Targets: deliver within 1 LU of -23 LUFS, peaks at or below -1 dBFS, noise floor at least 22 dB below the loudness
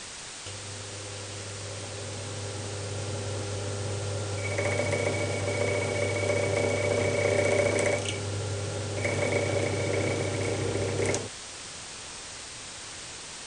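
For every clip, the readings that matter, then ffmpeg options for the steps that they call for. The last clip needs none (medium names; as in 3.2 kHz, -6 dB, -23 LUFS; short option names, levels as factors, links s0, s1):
noise floor -41 dBFS; noise floor target -52 dBFS; loudness -30.0 LUFS; peak level -12.0 dBFS; loudness target -23.0 LUFS
-> -af "afftdn=nr=11:nf=-41"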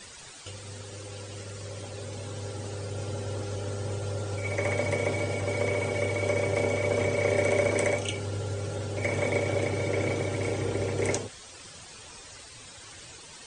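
noise floor -47 dBFS; noise floor target -52 dBFS
-> -af "afftdn=nr=6:nf=-47"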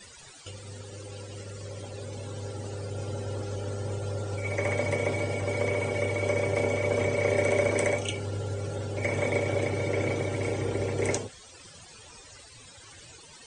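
noise floor -50 dBFS; noise floor target -52 dBFS
-> -af "afftdn=nr=6:nf=-50"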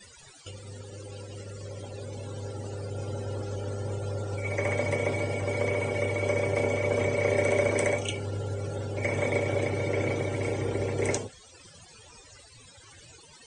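noise floor -53 dBFS; loudness -29.5 LUFS; peak level -12.5 dBFS; loudness target -23.0 LUFS
-> -af "volume=2.11"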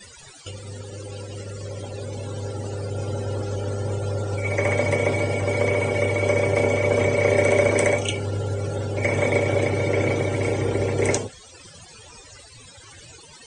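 loudness -23.0 LUFS; peak level -6.0 dBFS; noise floor -46 dBFS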